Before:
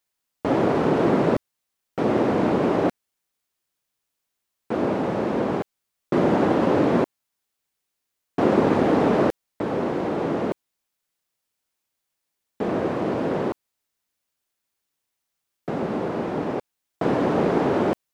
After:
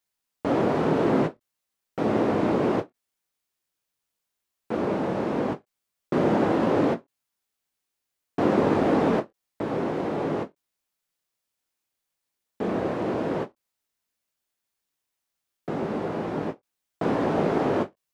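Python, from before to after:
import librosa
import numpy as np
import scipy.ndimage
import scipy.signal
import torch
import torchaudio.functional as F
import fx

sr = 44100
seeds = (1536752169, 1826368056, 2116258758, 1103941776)

y = fx.chorus_voices(x, sr, voices=2, hz=0.12, base_ms=23, depth_ms=5.0, mix_pct=30)
y = fx.end_taper(y, sr, db_per_s=410.0)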